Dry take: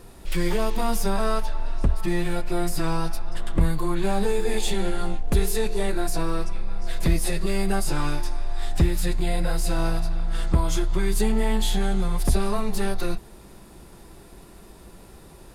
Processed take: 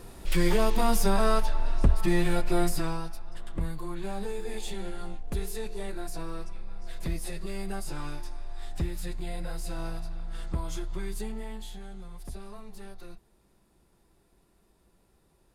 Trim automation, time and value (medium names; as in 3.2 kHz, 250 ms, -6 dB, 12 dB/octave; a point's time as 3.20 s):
2.63 s 0 dB
3.09 s -11 dB
11.02 s -11 dB
11.80 s -19.5 dB